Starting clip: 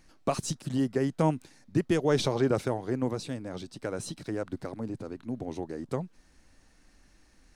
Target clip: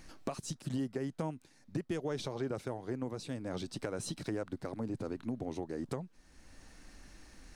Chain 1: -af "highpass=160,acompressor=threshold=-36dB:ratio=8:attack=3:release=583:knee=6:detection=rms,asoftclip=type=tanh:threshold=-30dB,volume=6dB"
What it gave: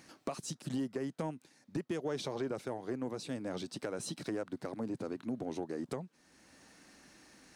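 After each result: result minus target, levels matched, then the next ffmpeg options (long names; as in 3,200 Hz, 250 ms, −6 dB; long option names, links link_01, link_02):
soft clipping: distortion +17 dB; 125 Hz band −4.0 dB
-af "highpass=160,acompressor=threshold=-36dB:ratio=8:attack=3:release=583:knee=6:detection=rms,asoftclip=type=tanh:threshold=-20.5dB,volume=6dB"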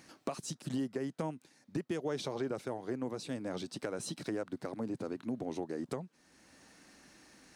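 125 Hz band −3.5 dB
-af "acompressor=threshold=-36dB:ratio=8:attack=3:release=583:knee=6:detection=rms,asoftclip=type=tanh:threshold=-20.5dB,volume=6dB"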